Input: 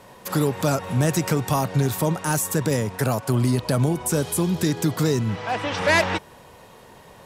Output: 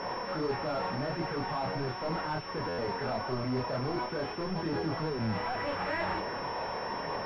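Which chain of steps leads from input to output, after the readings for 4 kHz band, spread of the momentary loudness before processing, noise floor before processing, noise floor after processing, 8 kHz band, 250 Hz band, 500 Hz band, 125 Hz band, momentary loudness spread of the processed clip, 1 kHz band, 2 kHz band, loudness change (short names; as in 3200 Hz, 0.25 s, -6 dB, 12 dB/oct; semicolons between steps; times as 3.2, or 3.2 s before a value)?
-8.5 dB, 5 LU, -48 dBFS, -38 dBFS, under -35 dB, -12.0 dB, -8.5 dB, -15.0 dB, 3 LU, -5.0 dB, -10.0 dB, -11.0 dB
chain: reverse; compressor, threshold -30 dBFS, peak gain reduction 14 dB; reverse; overdrive pedal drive 37 dB, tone 1500 Hz, clips at -18.5 dBFS; chorus voices 2, 0.42 Hz, delay 28 ms, depth 3.6 ms; stuck buffer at 2.68, samples 512; pulse-width modulation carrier 5400 Hz; gain -3.5 dB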